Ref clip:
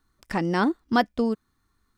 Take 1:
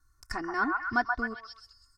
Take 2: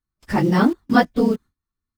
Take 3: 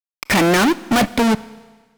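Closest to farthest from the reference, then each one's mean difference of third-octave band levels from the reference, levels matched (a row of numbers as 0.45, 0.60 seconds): 2, 1, 3; 4.5, 7.0, 12.5 decibels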